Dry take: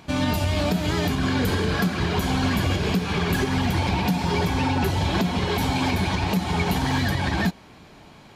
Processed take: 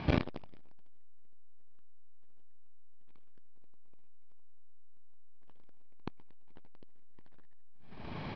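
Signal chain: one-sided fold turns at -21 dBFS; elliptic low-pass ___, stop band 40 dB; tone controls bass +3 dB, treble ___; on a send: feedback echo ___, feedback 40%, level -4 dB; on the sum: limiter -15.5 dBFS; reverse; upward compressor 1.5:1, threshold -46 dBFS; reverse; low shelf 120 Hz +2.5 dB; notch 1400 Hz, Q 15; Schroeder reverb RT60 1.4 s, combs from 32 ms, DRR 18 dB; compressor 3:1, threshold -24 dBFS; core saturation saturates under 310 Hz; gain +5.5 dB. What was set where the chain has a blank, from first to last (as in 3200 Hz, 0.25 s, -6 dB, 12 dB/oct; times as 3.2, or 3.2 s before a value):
5200 Hz, -9 dB, 78 ms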